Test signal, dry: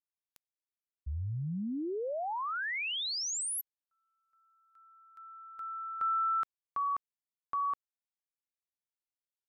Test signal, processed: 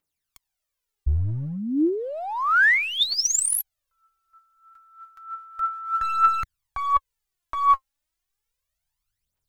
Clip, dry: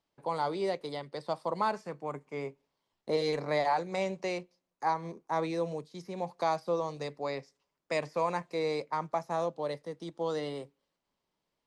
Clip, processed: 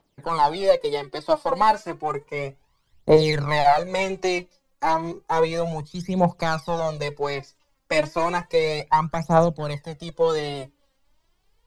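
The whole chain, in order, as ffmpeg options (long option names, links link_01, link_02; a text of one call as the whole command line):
ffmpeg -i in.wav -filter_complex "[0:a]asubboost=boost=7.5:cutoff=100,asplit=2[link_01][link_02];[link_02]aeval=exprs='clip(val(0),-1,0.02)':channel_layout=same,volume=-4dB[link_03];[link_01][link_03]amix=inputs=2:normalize=0,aphaser=in_gain=1:out_gain=1:delay=3.8:decay=0.7:speed=0.32:type=triangular,volume=5dB" out.wav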